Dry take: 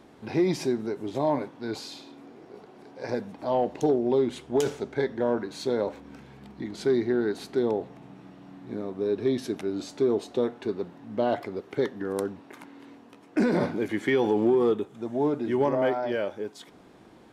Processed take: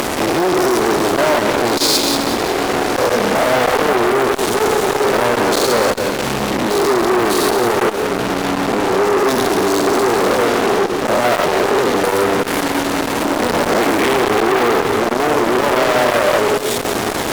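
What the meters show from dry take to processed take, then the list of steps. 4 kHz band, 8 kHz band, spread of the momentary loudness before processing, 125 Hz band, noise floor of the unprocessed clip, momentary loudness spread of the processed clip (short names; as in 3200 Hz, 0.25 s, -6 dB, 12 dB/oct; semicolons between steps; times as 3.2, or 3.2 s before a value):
+22.5 dB, +24.5 dB, 15 LU, +10.0 dB, -53 dBFS, 4 LU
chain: stepped spectrum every 0.2 s; HPF 52 Hz 24 dB/oct; bell 610 Hz +10 dB 2.4 oct; upward compressor, threshold -26 dBFS; pre-emphasis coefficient 0.8; fuzz box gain 55 dB, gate -50 dBFS; on a send: split-band echo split 330 Hz, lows 0.623 s, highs 0.181 s, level -6 dB; on the sum: core saturation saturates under 1400 Hz; gain +3.5 dB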